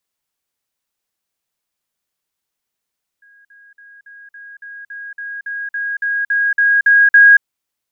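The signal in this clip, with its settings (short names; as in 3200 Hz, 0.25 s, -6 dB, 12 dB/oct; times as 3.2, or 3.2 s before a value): level ladder 1640 Hz -45.5 dBFS, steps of 3 dB, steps 15, 0.23 s 0.05 s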